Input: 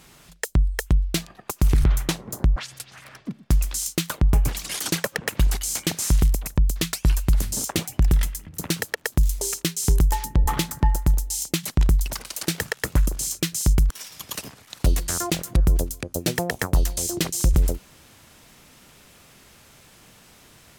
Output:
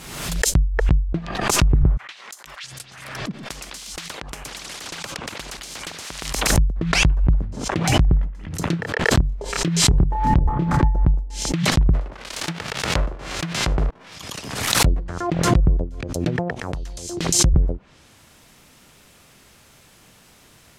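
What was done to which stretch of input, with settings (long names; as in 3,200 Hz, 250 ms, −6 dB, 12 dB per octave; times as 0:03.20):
0:01.97–0:02.64: Chebyshev high-pass filter 2,500 Hz
0:03.31–0:06.57: every bin compressed towards the loudest bin 4 to 1
0:08.69–0:10.77: double-tracking delay 29 ms −3.5 dB
0:11.93–0:14.14: spectral envelope flattened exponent 0.3
0:16.58–0:17.39: downward compressor, threshold −27 dBFS
whole clip: treble cut that deepens with the level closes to 840 Hz, closed at −18 dBFS; dynamic equaliser 130 Hz, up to +4 dB, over −34 dBFS, Q 1.2; background raised ahead of every attack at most 50 dB per second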